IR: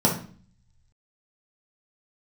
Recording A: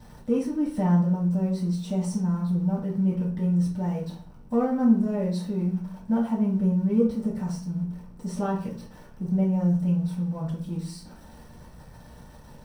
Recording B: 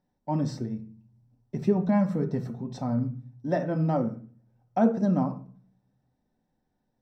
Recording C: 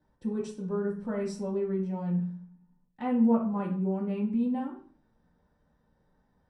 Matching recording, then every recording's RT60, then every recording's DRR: C; 0.45, 0.45, 0.45 s; -8.0, 5.0, -3.5 dB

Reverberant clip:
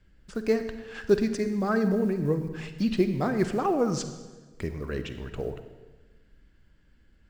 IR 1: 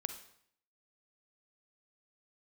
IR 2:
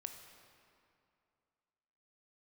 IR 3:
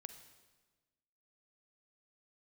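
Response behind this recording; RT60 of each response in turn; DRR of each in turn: 3; 0.65, 2.5, 1.3 s; 7.5, 5.5, 9.0 dB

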